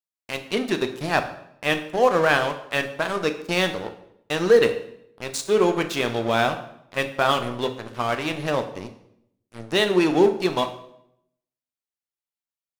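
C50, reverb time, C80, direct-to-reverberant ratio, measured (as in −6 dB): 11.0 dB, 0.70 s, 14.0 dB, 7.0 dB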